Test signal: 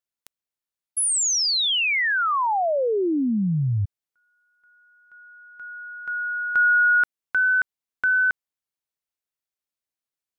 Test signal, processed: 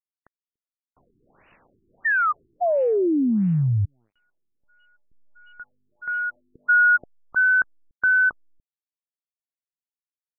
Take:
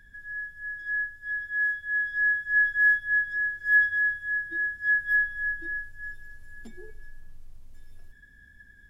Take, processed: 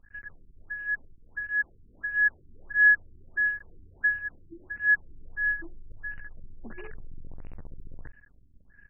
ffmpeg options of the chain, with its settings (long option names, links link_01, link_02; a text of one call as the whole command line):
ffmpeg -i in.wav -filter_complex "[0:a]asplit=2[link_01][link_02];[link_02]adelay=290,highpass=300,lowpass=3400,asoftclip=type=hard:threshold=-21.5dB,volume=-29dB[link_03];[link_01][link_03]amix=inputs=2:normalize=0,acrusher=bits=8:dc=4:mix=0:aa=0.000001,afftfilt=real='re*lt(b*sr/1024,400*pow(3000/400,0.5+0.5*sin(2*PI*1.5*pts/sr)))':imag='im*lt(b*sr/1024,400*pow(3000/400,0.5+0.5*sin(2*PI*1.5*pts/sr)))':win_size=1024:overlap=0.75,volume=2dB" out.wav